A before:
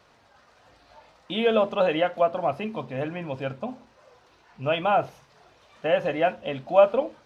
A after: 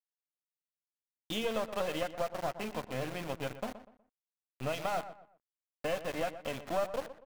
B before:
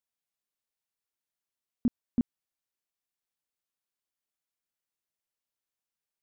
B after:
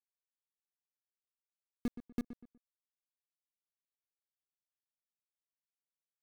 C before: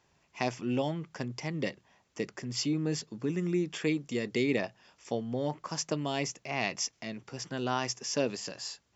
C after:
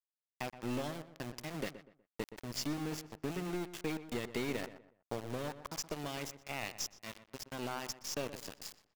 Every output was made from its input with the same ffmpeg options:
ffmpeg -i in.wav -filter_complex "[0:a]agate=range=-11dB:threshold=-44dB:ratio=16:detection=peak,acompressor=threshold=-30dB:ratio=3,aeval=exprs='(tanh(11.2*val(0)+0.7)-tanh(0.7))/11.2':channel_layout=same,aeval=exprs='val(0)*gte(abs(val(0)),0.0119)':channel_layout=same,asplit=2[link_01][link_02];[link_02]adelay=122,lowpass=frequency=2200:poles=1,volume=-12.5dB,asplit=2[link_03][link_04];[link_04]adelay=122,lowpass=frequency=2200:poles=1,volume=0.32,asplit=2[link_05][link_06];[link_06]adelay=122,lowpass=frequency=2200:poles=1,volume=0.32[link_07];[link_03][link_05][link_07]amix=inputs=3:normalize=0[link_08];[link_01][link_08]amix=inputs=2:normalize=0" out.wav

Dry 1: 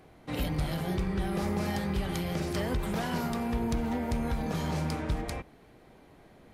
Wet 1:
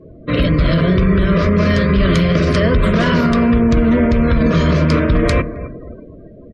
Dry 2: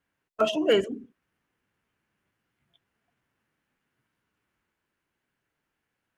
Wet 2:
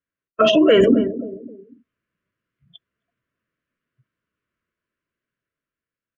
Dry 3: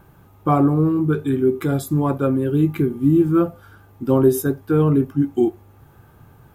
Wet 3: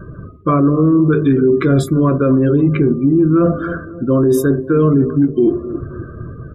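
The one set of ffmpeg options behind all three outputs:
ffmpeg -i in.wav -filter_complex "[0:a]dynaudnorm=framelen=140:gausssize=13:maxgain=7dB,asuperstop=centerf=820:order=8:qfactor=2.7,aemphasis=mode=reproduction:type=50fm,areverse,acompressor=threshold=-24dB:ratio=16,areverse,bandreject=frequency=50:width_type=h:width=6,bandreject=frequency=100:width_type=h:width=6,bandreject=frequency=150:width_type=h:width=6,bandreject=frequency=200:width_type=h:width=6,bandreject=frequency=250:width_type=h:width=6,bandreject=frequency=300:width_type=h:width=6,bandreject=frequency=350:width_type=h:width=6,bandreject=frequency=400:width_type=h:width=6,asplit=2[link_01][link_02];[link_02]adelay=265,lowpass=frequency=1600:poles=1,volume=-15.5dB,asplit=2[link_03][link_04];[link_04]adelay=265,lowpass=frequency=1600:poles=1,volume=0.38,asplit=2[link_05][link_06];[link_06]adelay=265,lowpass=frequency=1600:poles=1,volume=0.38[link_07];[link_01][link_03][link_05][link_07]amix=inputs=4:normalize=0,afftdn=noise_reduction=29:noise_floor=-53,alimiter=level_in=23.5dB:limit=-1dB:release=50:level=0:latency=1,volume=-4.5dB" out.wav

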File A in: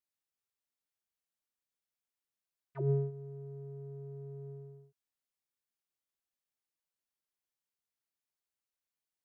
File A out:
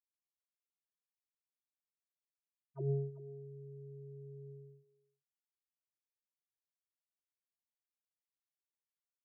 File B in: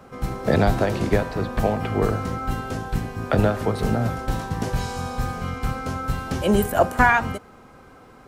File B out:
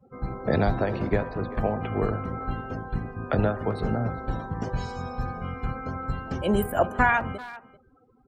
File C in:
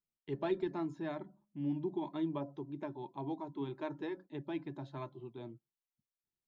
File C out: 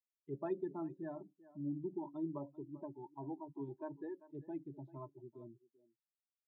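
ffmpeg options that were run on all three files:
ffmpeg -i in.wav -filter_complex "[0:a]afftdn=noise_reduction=30:noise_floor=-38,asplit=2[link_01][link_02];[link_02]adelay=390,highpass=300,lowpass=3400,asoftclip=type=hard:threshold=-12dB,volume=-17dB[link_03];[link_01][link_03]amix=inputs=2:normalize=0,volume=-4.5dB" out.wav

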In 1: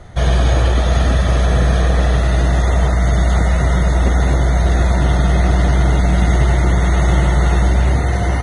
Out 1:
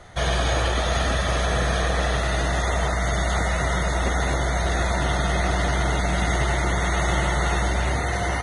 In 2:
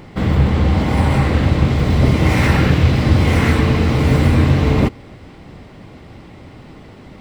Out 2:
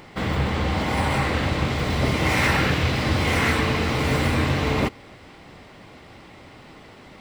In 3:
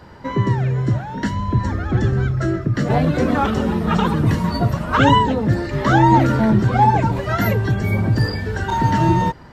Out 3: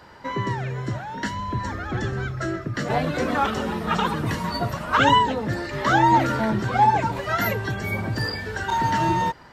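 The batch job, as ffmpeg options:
ffmpeg -i in.wav -af "lowshelf=frequency=420:gain=-11.5" out.wav

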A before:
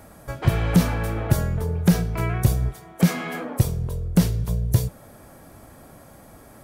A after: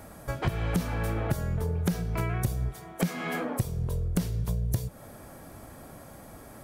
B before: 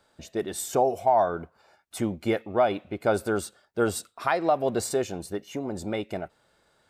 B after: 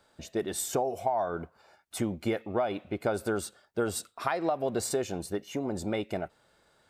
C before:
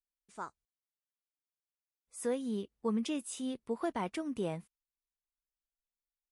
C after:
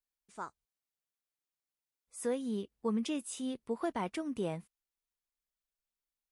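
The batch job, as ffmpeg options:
ffmpeg -i in.wav -af "acompressor=threshold=-25dB:ratio=6" out.wav

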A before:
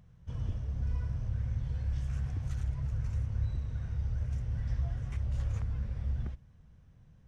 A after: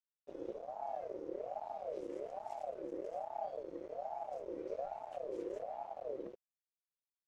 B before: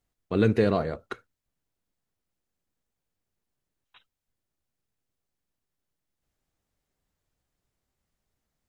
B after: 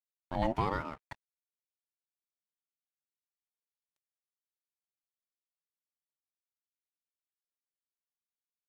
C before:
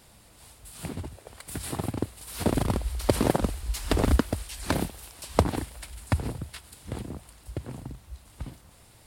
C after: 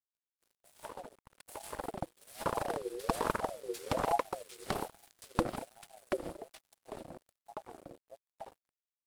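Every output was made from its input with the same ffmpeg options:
ffmpeg -i in.wav -af "aeval=exprs='sgn(val(0))*max(abs(val(0))-0.00596,0)':channel_layout=same,aeval=exprs='val(0)*sin(2*PI*590*n/s+590*0.3/1.2*sin(2*PI*1.2*n/s))':channel_layout=same,volume=-6dB" out.wav

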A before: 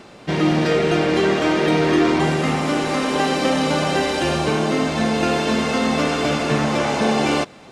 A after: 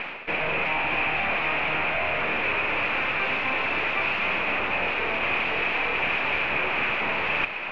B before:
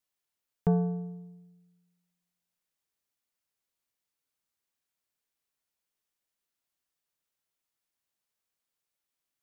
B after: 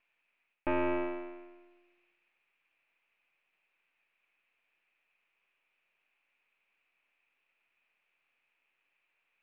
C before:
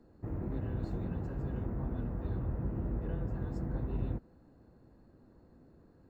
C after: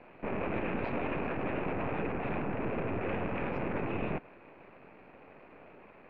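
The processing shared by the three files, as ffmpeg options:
ffmpeg -i in.wav -filter_complex "[0:a]areverse,acompressor=threshold=-31dB:ratio=6,areverse,aeval=exprs='abs(val(0))':channel_layout=same,asplit=2[link_01][link_02];[link_02]highpass=frequency=720:poles=1,volume=19dB,asoftclip=type=tanh:threshold=-22.5dB[link_03];[link_01][link_03]amix=inputs=2:normalize=0,lowpass=frequency=1200:poles=1,volume=-6dB,lowpass=frequency=2500:width_type=q:width=8.7,volume=3dB" out.wav

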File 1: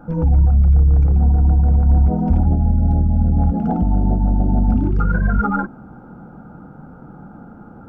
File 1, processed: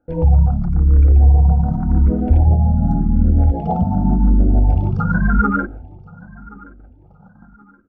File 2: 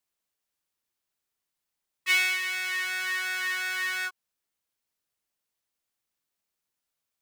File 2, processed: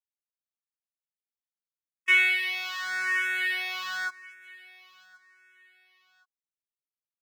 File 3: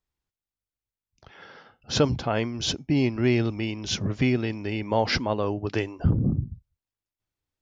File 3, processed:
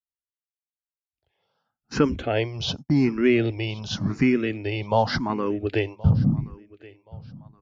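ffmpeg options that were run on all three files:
ffmpeg -i in.wav -filter_complex "[0:a]acrossover=split=4000[link_01][link_02];[link_02]acompressor=threshold=-45dB:ratio=4:attack=1:release=60[link_03];[link_01][link_03]amix=inputs=2:normalize=0,agate=range=-26dB:threshold=-35dB:ratio=16:detection=peak,aecho=1:1:1074|2148:0.0794|0.0246,asplit=2[link_04][link_05];[link_05]afreqshift=0.88[link_06];[link_04][link_06]amix=inputs=2:normalize=1,volume=4.5dB" out.wav

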